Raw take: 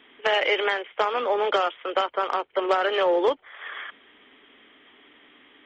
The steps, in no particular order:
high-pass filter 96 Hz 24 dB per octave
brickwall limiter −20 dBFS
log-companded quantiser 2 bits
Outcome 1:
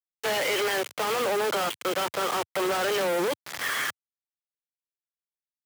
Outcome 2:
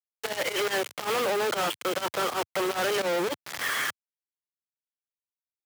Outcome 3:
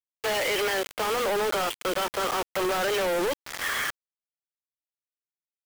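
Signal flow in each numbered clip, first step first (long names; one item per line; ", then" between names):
brickwall limiter, then log-companded quantiser, then high-pass filter
log-companded quantiser, then high-pass filter, then brickwall limiter
high-pass filter, then brickwall limiter, then log-companded quantiser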